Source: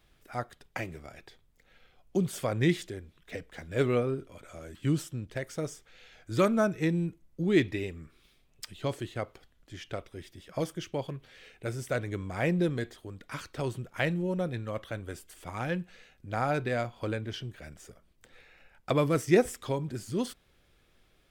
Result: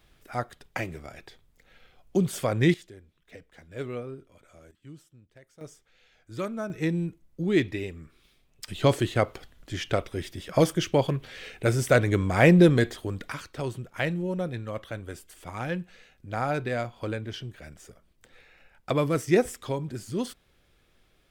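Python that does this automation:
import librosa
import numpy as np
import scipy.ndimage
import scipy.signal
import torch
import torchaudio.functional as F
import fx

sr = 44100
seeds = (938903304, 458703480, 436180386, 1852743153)

y = fx.gain(x, sr, db=fx.steps((0.0, 4.0), (2.74, -8.0), (4.71, -18.5), (5.61, -7.5), (6.7, 1.0), (8.68, 11.0), (13.32, 1.0)))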